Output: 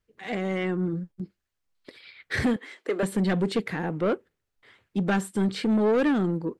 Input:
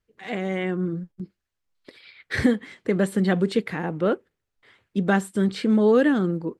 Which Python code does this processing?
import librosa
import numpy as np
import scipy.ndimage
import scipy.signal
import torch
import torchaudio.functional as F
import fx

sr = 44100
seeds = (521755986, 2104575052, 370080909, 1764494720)

y = fx.highpass(x, sr, hz=330.0, slope=24, at=(2.56, 3.03))
y = 10.0 ** (-18.0 / 20.0) * np.tanh(y / 10.0 ** (-18.0 / 20.0))